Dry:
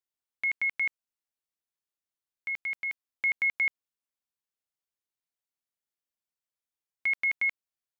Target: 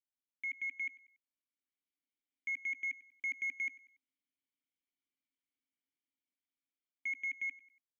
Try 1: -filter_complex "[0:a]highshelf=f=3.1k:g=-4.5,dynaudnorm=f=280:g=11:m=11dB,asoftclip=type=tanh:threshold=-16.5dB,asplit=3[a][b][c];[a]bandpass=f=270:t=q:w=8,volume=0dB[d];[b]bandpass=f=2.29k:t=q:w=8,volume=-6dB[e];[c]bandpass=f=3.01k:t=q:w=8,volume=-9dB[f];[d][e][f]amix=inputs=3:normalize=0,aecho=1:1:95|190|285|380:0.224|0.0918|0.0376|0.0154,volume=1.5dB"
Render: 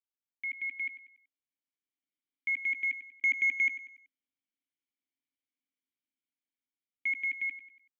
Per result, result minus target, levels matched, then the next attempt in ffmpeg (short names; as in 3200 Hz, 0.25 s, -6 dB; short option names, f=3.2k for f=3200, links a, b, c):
soft clip: distortion -9 dB; echo-to-direct +6.5 dB
-filter_complex "[0:a]highshelf=f=3.1k:g=-4.5,dynaudnorm=f=280:g=11:m=11dB,asoftclip=type=tanh:threshold=-28dB,asplit=3[a][b][c];[a]bandpass=f=270:t=q:w=8,volume=0dB[d];[b]bandpass=f=2.29k:t=q:w=8,volume=-6dB[e];[c]bandpass=f=3.01k:t=q:w=8,volume=-9dB[f];[d][e][f]amix=inputs=3:normalize=0,aecho=1:1:95|190|285|380:0.224|0.0918|0.0376|0.0154,volume=1.5dB"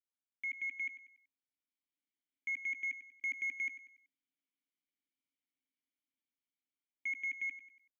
echo-to-direct +6.5 dB
-filter_complex "[0:a]highshelf=f=3.1k:g=-4.5,dynaudnorm=f=280:g=11:m=11dB,asoftclip=type=tanh:threshold=-28dB,asplit=3[a][b][c];[a]bandpass=f=270:t=q:w=8,volume=0dB[d];[b]bandpass=f=2.29k:t=q:w=8,volume=-6dB[e];[c]bandpass=f=3.01k:t=q:w=8,volume=-9dB[f];[d][e][f]amix=inputs=3:normalize=0,aecho=1:1:95|190|285:0.106|0.0434|0.0178,volume=1.5dB"